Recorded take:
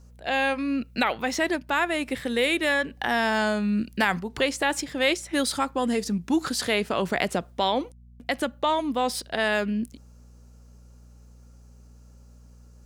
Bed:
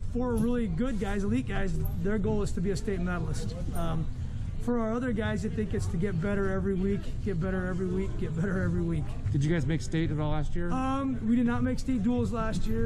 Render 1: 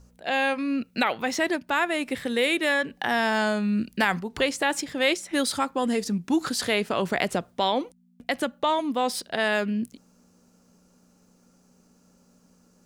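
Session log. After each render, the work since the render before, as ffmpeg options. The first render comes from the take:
-af "bandreject=f=60:t=h:w=4,bandreject=f=120:t=h:w=4"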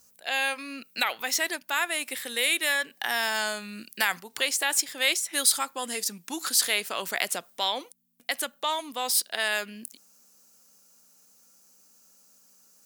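-af "highpass=f=1.4k:p=1,aemphasis=mode=production:type=50fm"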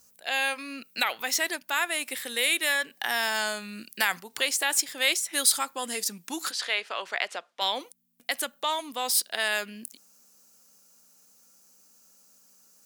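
-filter_complex "[0:a]asplit=3[a][b][c];[a]afade=t=out:st=6.5:d=0.02[d];[b]highpass=480,lowpass=3.6k,afade=t=in:st=6.5:d=0.02,afade=t=out:st=7.6:d=0.02[e];[c]afade=t=in:st=7.6:d=0.02[f];[d][e][f]amix=inputs=3:normalize=0"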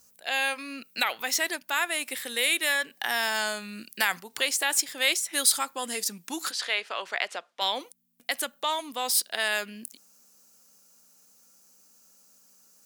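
-af anull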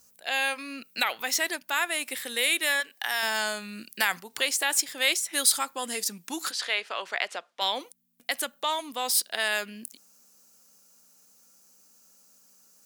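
-filter_complex "[0:a]asettb=1/sr,asplit=3[a][b][c];[a]atrim=end=2.804[d];[b]atrim=start=2.8:end=3.23,asetpts=PTS-STARTPTS,afade=t=in:d=0.004:c=qsin,afade=t=out:st=0.426:d=0.004:c=qsin,highpass=f=760:p=1[e];[c]atrim=start=3.226[f];[d][e]acrossfade=d=0.004:c1=hsin:c2=qsin[g];[g][f]acrossfade=d=0.004:c1=qsin:c2=hsin"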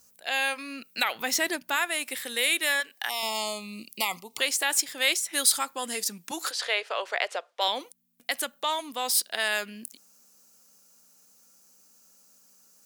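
-filter_complex "[0:a]asettb=1/sr,asplit=3[a][b][c];[a]atrim=end=1.154[d];[b]atrim=start=1.15:end=1.76,asetpts=PTS-STARTPTS,afade=t=in:d=0.004:c=qsin,afade=t=out:st=0.606:d=0.004:c=qsin,lowshelf=f=360:g=11[e];[c]atrim=start=1.756[f];[d][e]acrossfade=d=0.004:c1=hsin:c2=qsin[g];[g][f]acrossfade=d=0.004:c1=qsin:c2=hsin,asettb=1/sr,asplit=3[h][i][j];[h]atrim=end=3.094[k];[i]atrim=start=3.09:end=4.38,asetpts=PTS-STARTPTS,afade=t=in:d=0.004:c=qsin,afade=t=out:st=1.286:d=0.004:c=qsin,asuperstop=centerf=1600:order=12:qfactor=2.1[l];[j]atrim=start=4.376[m];[k][l]acrossfade=d=0.004:c1=hsin:c2=qsin[n];[n][m]acrossfade=d=0.004:c1=qsin:c2=hsin,asettb=1/sr,asplit=3[o][p][q];[o]atrim=end=6.314[r];[p]atrim=start=6.31:end=7.68,asetpts=PTS-STARTPTS,afade=t=in:d=0.004:c=qsin,afade=t=out:st=1.366:d=0.004:c=qsin,highpass=f=480:t=q:w=2.1[s];[q]atrim=start=7.676[t];[r][s]acrossfade=d=0.004:c1=hsin:c2=qsin[u];[u][t]acrossfade=d=0.004:c1=qsin:c2=hsin"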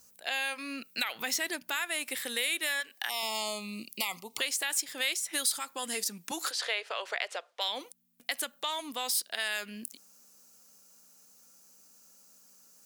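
-filter_complex "[0:a]acrossover=split=1500[a][b];[a]alimiter=level_in=4.5dB:limit=-24dB:level=0:latency=1:release=156,volume=-4.5dB[c];[c][b]amix=inputs=2:normalize=0,acompressor=threshold=-31dB:ratio=2"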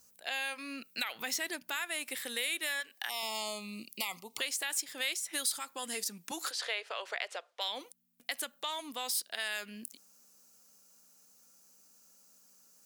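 -af "volume=-3.5dB"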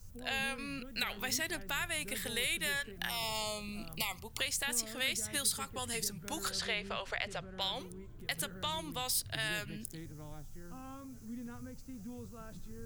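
-filter_complex "[1:a]volume=-19dB[a];[0:a][a]amix=inputs=2:normalize=0"

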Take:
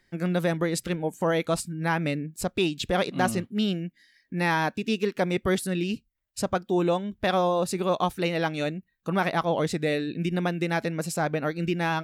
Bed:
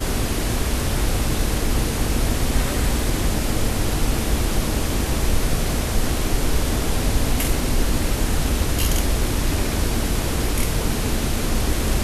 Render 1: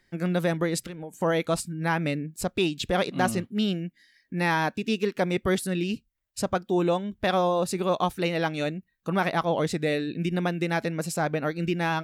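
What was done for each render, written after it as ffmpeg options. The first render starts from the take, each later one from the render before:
-filter_complex "[0:a]asettb=1/sr,asplit=3[a][b][c];[a]atrim=end=0.804[d];[b]atrim=start=0.8:end=1.22,asetpts=PTS-STARTPTS,afade=t=in:d=0.004:c=qsin,afade=t=out:st=0.416:d=0.004:c=qsin,acompressor=threshold=-33dB:ratio=10:attack=3.2:release=140:knee=1:detection=peak[e];[c]atrim=start=1.216[f];[d][e]acrossfade=d=0.004:c1=hsin:c2=qsin[g];[g][f]acrossfade=d=0.004:c1=qsin:c2=hsin"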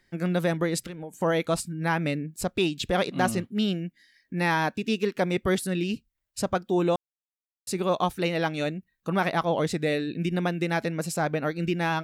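-filter_complex "[0:a]asplit=3[a][b][c];[a]atrim=end=6.96,asetpts=PTS-STARTPTS,afade=t=out:st=6.956:d=0.004:c=hsin[d];[b]atrim=start=6.96:end=7.67,asetpts=PTS-STARTPTS,volume=0[e];[c]atrim=start=7.67,asetpts=PTS-STARTPTS,afade=t=in:d=0.004:c=hsin[f];[d][e][f]concat=n=3:v=0:a=1"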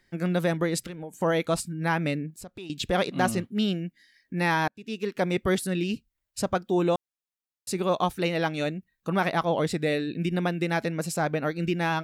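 -filter_complex "[0:a]asettb=1/sr,asplit=3[a][b][c];[a]atrim=end=2.304[d];[b]atrim=start=2.3:end=2.7,asetpts=PTS-STARTPTS,afade=t=in:d=0.004:c=qsin,afade=t=out:st=0.396:d=0.004:c=qsin,acompressor=threshold=-45dB:ratio=2.5:attack=3.2:release=140:knee=1:detection=peak[e];[c]atrim=start=2.696[f];[d][e]acrossfade=d=0.004:c1=hsin:c2=qsin[g];[g][f]acrossfade=d=0.004:c1=qsin:c2=hsin,asettb=1/sr,asplit=3[h][i][j];[h]atrim=end=9.564[k];[i]atrim=start=9.56:end=10.66,asetpts=PTS-STARTPTS,afade=t=in:d=0.004:c=qsin,afade=t=out:st=1.096:d=0.004:c=qsin,bandreject=f=6.3k:w=12[l];[j]atrim=start=10.656[m];[k][l]acrossfade=d=0.004:c1=hsin:c2=qsin[n];[n][m]acrossfade=d=0.004:c1=qsin:c2=hsin,asplit=2[o][p];[o]atrim=end=4.68,asetpts=PTS-STARTPTS,afade=t=out:st=4.676:d=0.004:c=hsin[q];[p]atrim=start=4.68,asetpts=PTS-STARTPTS,afade=t=in:d=0.58[r];[q][r]concat=n=2:v=0:a=1"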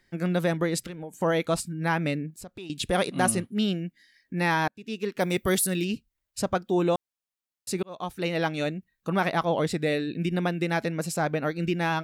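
-filter_complex "[0:a]asettb=1/sr,asplit=3[a][b][c];[a]atrim=end=2.754[d];[b]atrim=start=2.75:end=3.55,asetpts=PTS-STARTPTS,afade=t=in:d=0.004:c=qsin,afade=t=out:st=0.796:d=0.004:c=qsin,equalizer=f=9.7k:w=3.7:g=14.5[e];[c]atrim=start=3.546[f];[d][e]acrossfade=d=0.004:c1=hsin:c2=qsin[g];[g][f]acrossfade=d=0.004:c1=qsin:c2=hsin,asettb=1/sr,asplit=3[h][i][j];[h]atrim=end=5.204[k];[i]atrim=start=5.2:end=5.85,asetpts=PTS-STARTPTS,afade=t=in:d=0.004:c=qsin,afade=t=out:st=0.646:d=0.004:c=qsin,aemphasis=mode=production:type=50fm[l];[j]atrim=start=5.846[m];[k][l]acrossfade=d=0.004:c1=hsin:c2=qsin[n];[n][m]acrossfade=d=0.004:c1=qsin:c2=hsin,asplit=2[o][p];[o]atrim=end=7.83,asetpts=PTS-STARTPTS,afade=t=out:st=7.826:d=0.004:c=hsin[q];[p]atrim=start=7.83,asetpts=PTS-STARTPTS,afade=t=in:d=0.54[r];[q][r]concat=n=2:v=0:a=1"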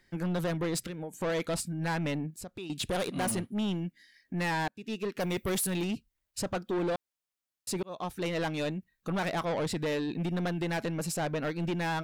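-af "asoftclip=type=tanh:threshold=-27dB"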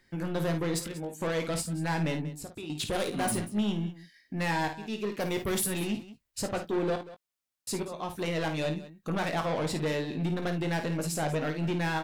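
-filter_complex "[0:a]asplit=2[a][b];[b]adelay=19,volume=-8.5dB[c];[a][c]amix=inputs=2:normalize=0,aecho=1:1:53|187:0.376|0.15"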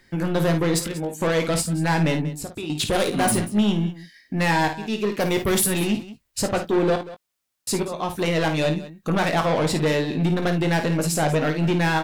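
-af "volume=9dB"

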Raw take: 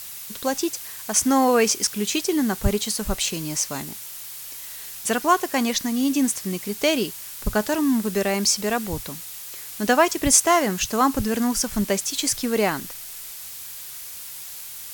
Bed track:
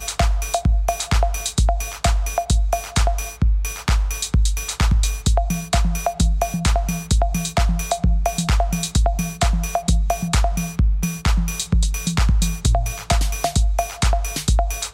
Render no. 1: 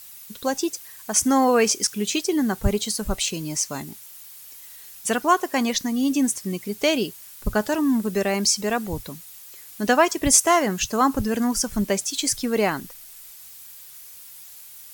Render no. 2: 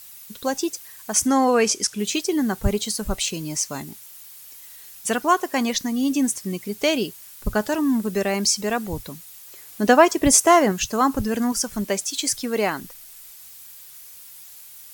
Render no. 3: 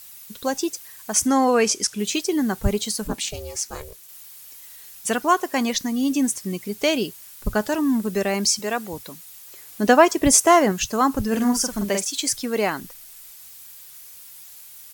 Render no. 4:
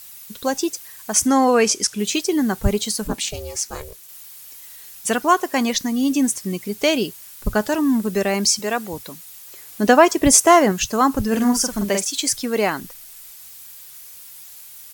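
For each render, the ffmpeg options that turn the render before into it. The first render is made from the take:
-af "afftdn=nr=9:nf=-37"
-filter_complex "[0:a]asettb=1/sr,asplit=3[a][b][c];[a]atrim=end=1.264[d];[b]atrim=start=1.26:end=1.99,asetpts=PTS-STARTPTS,afade=t=in:d=0.004:c=qsin,afade=t=out:st=0.726:d=0.004:c=qsin,lowpass=11k[e];[c]atrim=start=1.986[f];[d][e]acrossfade=d=0.004:c1=hsin:c2=qsin[g];[g][f]acrossfade=d=0.004:c1=qsin:c2=hsin,asettb=1/sr,asplit=3[h][i][j];[h]atrim=end=9.474[k];[i]atrim=start=9.47:end=10.72,asetpts=PTS-STARTPTS,afade=t=in:d=0.004:c=qsin,afade=t=out:st=1.246:d=0.004:c=qsin,equalizer=f=420:w=0.39:g=5[l];[j]atrim=start=10.716[m];[k][l]acrossfade=d=0.004:c1=hsin:c2=qsin[n];[n][m]acrossfade=d=0.004:c1=qsin:c2=hsin,asettb=1/sr,asplit=3[o][p][q];[o]atrim=end=11.524[r];[p]atrim=start=11.52:end=12.8,asetpts=PTS-STARTPTS,afade=t=in:d=0.004:c=qsin,afade=t=out:st=1.276:d=0.004:c=qsin,lowshelf=f=150:g=-9[s];[q]atrim=start=12.796[t];[r][s]acrossfade=d=0.004:c1=hsin:c2=qsin[u];[u][t]acrossfade=d=0.004:c1=qsin:c2=hsin"
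-filter_complex "[0:a]asplit=3[a][b][c];[a]afade=t=out:st=3.07:d=0.02[d];[b]aeval=exprs='val(0)*sin(2*PI*230*n/s)':c=same,afade=t=in:st=3.07:d=0.02,afade=t=out:st=4.07:d=0.02[e];[c]afade=t=in:st=4.07:d=0.02[f];[d][e][f]amix=inputs=3:normalize=0,asettb=1/sr,asplit=3[g][h][i];[g]atrim=end=8.594[j];[h]atrim=start=8.59:end=9.26,asetpts=PTS-STARTPTS,afade=t=in:d=0.004:c=qsin,afade=t=out:st=0.666:d=0.004:c=qsin,highpass=f=310:p=1[k];[i]atrim=start=9.256[l];[j][k]acrossfade=d=0.004:c1=hsin:c2=qsin[m];[m][l]acrossfade=d=0.004:c1=qsin:c2=hsin,asplit=3[n][o][p];[n]afade=t=out:st=11.31:d=0.02[q];[o]asplit=2[r][s];[s]adelay=45,volume=-4dB[t];[r][t]amix=inputs=2:normalize=0,afade=t=in:st=11.31:d=0.02,afade=t=out:st=12.1:d=0.02[u];[p]afade=t=in:st=12.1:d=0.02[v];[q][u][v]amix=inputs=3:normalize=0"
-af "volume=2.5dB,alimiter=limit=-1dB:level=0:latency=1"

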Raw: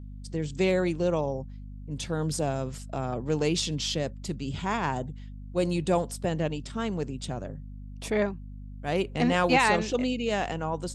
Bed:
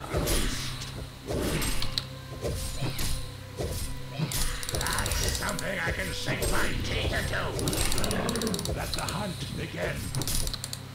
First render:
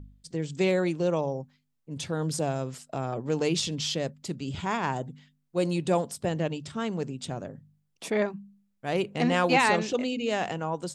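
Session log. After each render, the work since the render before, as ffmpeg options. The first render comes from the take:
-af "bandreject=f=50:t=h:w=4,bandreject=f=100:t=h:w=4,bandreject=f=150:t=h:w=4,bandreject=f=200:t=h:w=4,bandreject=f=250:t=h:w=4"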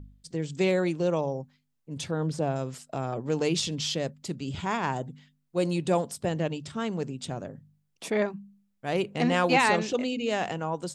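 -filter_complex "[0:a]asettb=1/sr,asplit=3[a][b][c];[a]atrim=end=2.114[d];[b]atrim=start=2.11:end=2.56,asetpts=PTS-STARTPTS,afade=t=in:d=0.004:c=qsin,afade=t=out:st=0.446:d=0.004:c=qsin,aemphasis=mode=reproduction:type=75fm[e];[c]atrim=start=2.556[f];[d][e]acrossfade=d=0.004:c1=hsin:c2=qsin[g];[g][f]acrossfade=d=0.004:c1=qsin:c2=hsin"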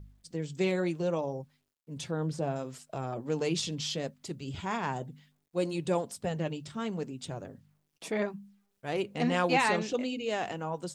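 -af "acrusher=bits=11:mix=0:aa=0.000001,flanger=delay=1.8:depth=4.7:regen=-60:speed=0.68:shape=triangular"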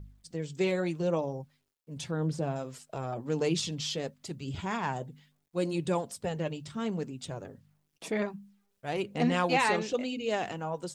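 -af "aphaser=in_gain=1:out_gain=1:delay=2.5:decay=0.25:speed=0.87:type=triangular"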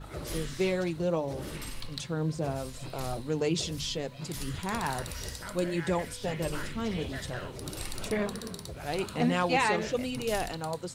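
-filter_complex "[1:a]volume=-10.5dB[a];[0:a][a]amix=inputs=2:normalize=0"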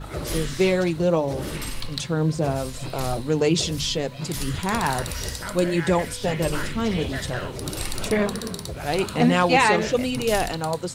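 -af "volume=8.5dB"

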